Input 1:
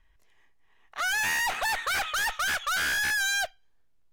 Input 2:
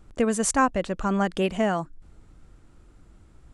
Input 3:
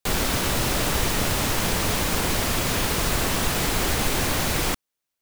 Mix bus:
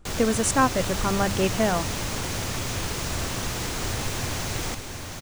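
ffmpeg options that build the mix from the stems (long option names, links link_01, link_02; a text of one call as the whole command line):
ffmpeg -i stem1.wav -i stem2.wav -i stem3.wav -filter_complex "[1:a]volume=0.5dB[link_01];[2:a]equalizer=frequency=100:width_type=o:width=0.67:gain=9,equalizer=frequency=6300:width_type=o:width=0.67:gain=5,equalizer=frequency=16000:width_type=o:width=0.67:gain=-7,volume=-7.5dB,asplit=2[link_02][link_03];[link_03]volume=-6dB,aecho=0:1:717:1[link_04];[link_01][link_02][link_04]amix=inputs=3:normalize=0,bandreject=frequency=50:width_type=h:width=6,bandreject=frequency=100:width_type=h:width=6,bandreject=frequency=150:width_type=h:width=6,bandreject=frequency=200:width_type=h:width=6" out.wav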